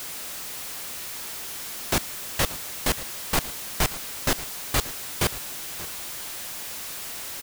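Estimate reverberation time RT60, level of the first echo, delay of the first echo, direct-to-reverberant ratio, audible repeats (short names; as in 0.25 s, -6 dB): none, -17.0 dB, 0.581 s, none, 1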